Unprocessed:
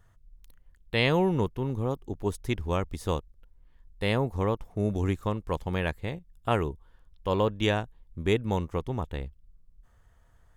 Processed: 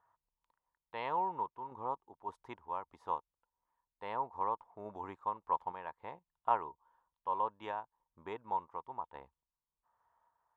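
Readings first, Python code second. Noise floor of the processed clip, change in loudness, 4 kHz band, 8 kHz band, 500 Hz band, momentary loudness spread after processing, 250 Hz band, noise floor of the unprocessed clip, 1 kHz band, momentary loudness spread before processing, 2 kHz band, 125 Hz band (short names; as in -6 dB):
under -85 dBFS, -10.0 dB, under -20 dB, under -25 dB, -15.5 dB, 14 LU, -23.0 dB, -61 dBFS, -0.5 dB, 10 LU, -17.0 dB, -30.0 dB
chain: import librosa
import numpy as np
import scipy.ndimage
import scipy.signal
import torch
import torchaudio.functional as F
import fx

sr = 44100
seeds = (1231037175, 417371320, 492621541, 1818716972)

y = fx.tremolo_random(x, sr, seeds[0], hz=3.5, depth_pct=55)
y = fx.bandpass_q(y, sr, hz=950.0, q=6.5)
y = F.gain(torch.from_numpy(y), 7.0).numpy()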